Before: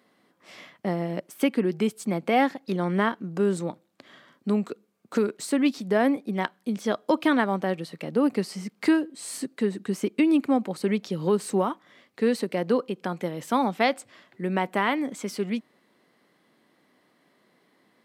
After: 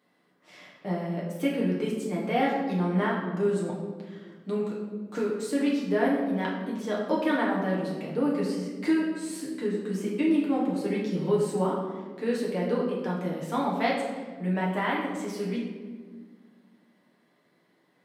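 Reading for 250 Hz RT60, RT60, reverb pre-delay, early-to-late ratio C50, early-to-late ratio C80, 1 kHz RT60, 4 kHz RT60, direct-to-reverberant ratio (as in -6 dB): 2.5 s, 1.6 s, 7 ms, 2.5 dB, 4.5 dB, 1.3 s, 0.90 s, -5.5 dB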